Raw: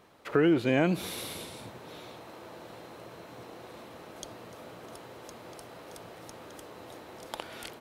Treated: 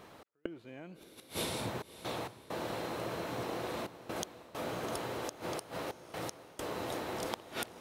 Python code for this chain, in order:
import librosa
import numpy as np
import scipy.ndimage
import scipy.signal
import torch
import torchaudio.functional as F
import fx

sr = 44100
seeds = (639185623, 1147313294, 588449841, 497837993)

p1 = fx.rider(x, sr, range_db=3, speed_s=2.0)
p2 = fx.step_gate(p1, sr, bpm=66, pattern='x.xxxxxx.', floor_db=-60.0, edge_ms=4.5)
p3 = fx.gate_flip(p2, sr, shuts_db=-27.0, range_db=-29)
p4 = np.clip(p3, -10.0 ** (-26.0 / 20.0), 10.0 ** (-26.0 / 20.0))
p5 = p4 + fx.echo_diffused(p4, sr, ms=600, feedback_pct=41, wet_db=-14.5, dry=0)
y = p5 * 10.0 ** (5.5 / 20.0)